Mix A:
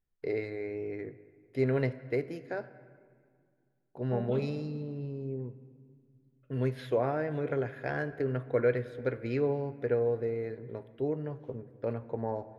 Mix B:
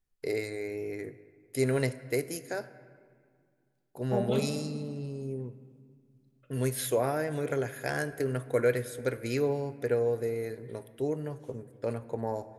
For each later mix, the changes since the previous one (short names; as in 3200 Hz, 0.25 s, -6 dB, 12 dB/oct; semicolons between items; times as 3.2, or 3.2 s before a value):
second voice +6.5 dB; master: remove air absorption 330 m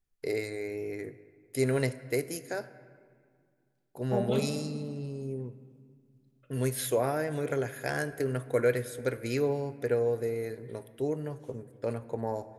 none